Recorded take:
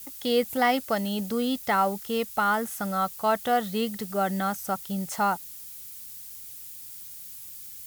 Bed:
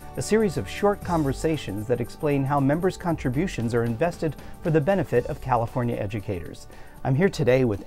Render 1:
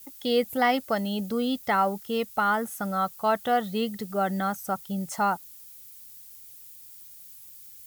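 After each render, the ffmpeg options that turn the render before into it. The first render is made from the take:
-af "afftdn=nr=7:nf=-42"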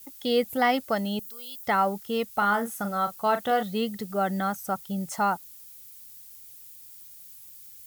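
-filter_complex "[0:a]asettb=1/sr,asplit=3[a][b][c];[a]atrim=end=1.194[d];[b]atrim=start=1.19:end=1.64,asetpts=PTS-STARTPTS,afade=t=in:d=0.004:c=qsin,afade=t=out:st=0.446:d=0.004:c=qsin,aderivative[e];[c]atrim=start=1.636[f];[d][e]acrossfade=d=0.004:c1=hsin:c2=qsin[g];[g][f]acrossfade=d=0.004:c1=qsin:c2=hsin,asettb=1/sr,asplit=3[h][i][j];[h]atrim=end=2.284[k];[i]atrim=start=2.28:end=3.63,asetpts=PTS-STARTPTS,afade=t=in:d=0.004:c=qsin,afade=t=out:st=1.346:d=0.004:c=qsin,asplit=2[l][m];[m]adelay=39,volume=-9.5dB[n];[l][n]amix=inputs=2:normalize=0,atrim=end_sample=59535[o];[j]atrim=start=3.626[p];[k][o]acrossfade=d=0.004:c1=hsin:c2=qsin[q];[q][p]acrossfade=d=0.004:c1=qsin:c2=hsin"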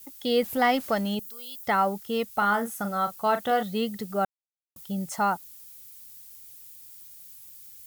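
-filter_complex "[0:a]asettb=1/sr,asplit=3[a][b][c];[a]atrim=end=0.424[d];[b]atrim=start=0.42:end=1.15,asetpts=PTS-STARTPTS,afade=t=in:d=0.004:c=qsin,afade=t=out:st=0.726:d=0.004:c=qsin,aeval=exprs='val(0)+0.5*0.0112*sgn(val(0))':c=same[e];[c]atrim=start=1.146[f];[d][e]acrossfade=d=0.004:c1=hsin:c2=qsin[g];[g][f]acrossfade=d=0.004:c1=qsin:c2=hsin,asplit=3[h][i][j];[h]atrim=end=4.25,asetpts=PTS-STARTPTS,afade=t=out:st=4.246:d=0.004:c=hsin[k];[i]atrim=start=4.25:end=4.76,asetpts=PTS-STARTPTS,volume=0[l];[j]atrim=start=4.76,asetpts=PTS-STARTPTS,afade=t=in:d=0.004:c=hsin[m];[k][l][m]concat=n=3:v=0:a=1"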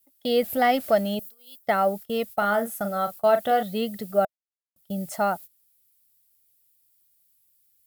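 -af "agate=range=-19dB:threshold=-38dB:ratio=16:detection=peak,equalizer=f=630:t=o:w=0.33:g=11,equalizer=f=1k:t=o:w=0.33:g=-9,equalizer=f=6.3k:t=o:w=0.33:g=-5,equalizer=f=12.5k:t=o:w=0.33:g=5"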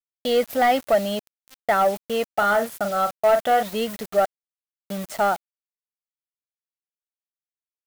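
-filter_complex "[0:a]asplit=2[a][b];[b]highpass=f=720:p=1,volume=13dB,asoftclip=type=tanh:threshold=-9dB[c];[a][c]amix=inputs=2:normalize=0,lowpass=f=2.4k:p=1,volume=-6dB,acrusher=bits=5:mix=0:aa=0.000001"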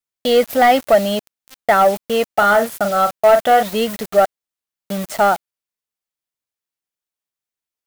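-af "volume=6.5dB"

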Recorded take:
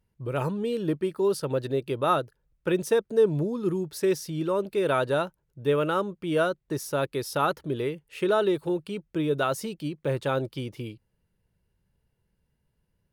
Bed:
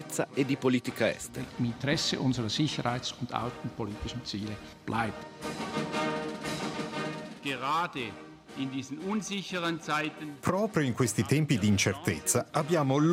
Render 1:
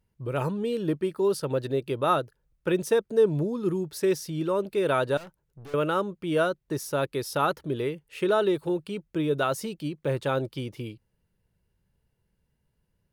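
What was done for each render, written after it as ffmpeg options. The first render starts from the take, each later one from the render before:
-filter_complex "[0:a]asettb=1/sr,asplit=3[a][b][c];[a]atrim=end=5.174[d];[b]atrim=start=5.17:end=5.74,asetpts=PTS-STARTPTS,afade=t=in:d=0.004:c=qsin,afade=t=out:st=0.566:d=0.004:c=qsin,aeval=exprs='(tanh(126*val(0)+0.25)-tanh(0.25))/126':c=same[e];[c]atrim=start=5.736[f];[d][e]acrossfade=d=0.004:c1=hsin:c2=qsin[g];[g][f]acrossfade=d=0.004:c1=qsin:c2=hsin"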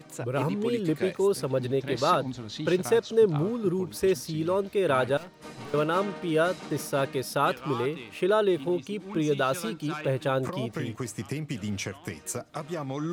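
-filter_complex "[1:a]volume=-7dB[a];[0:a][a]amix=inputs=2:normalize=0"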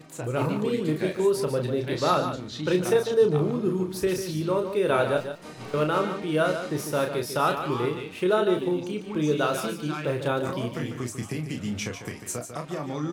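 -filter_complex "[0:a]asplit=2[a][b];[b]adelay=33,volume=-6dB[c];[a][c]amix=inputs=2:normalize=0,asplit=2[d][e];[e]aecho=0:1:147:0.355[f];[d][f]amix=inputs=2:normalize=0"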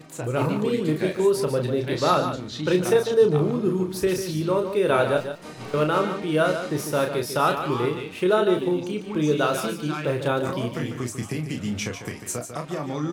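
-af "volume=2.5dB"

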